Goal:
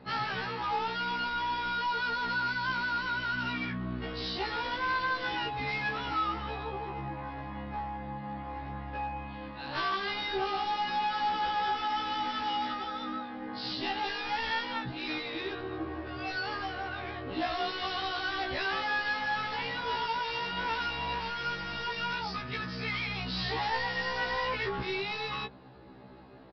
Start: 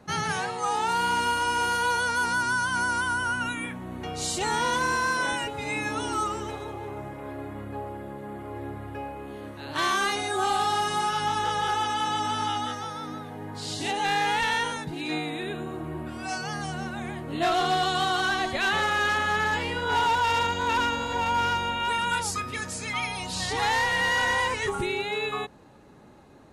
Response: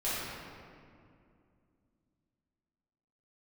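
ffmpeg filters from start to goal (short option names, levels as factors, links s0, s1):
-af "acompressor=threshold=0.0501:ratio=6,aresample=11025,volume=33.5,asoftclip=hard,volume=0.0299,aresample=44100,afftfilt=real='re*1.73*eq(mod(b,3),0)':imag='im*1.73*eq(mod(b,3),0)':win_size=2048:overlap=0.75,volume=1.41"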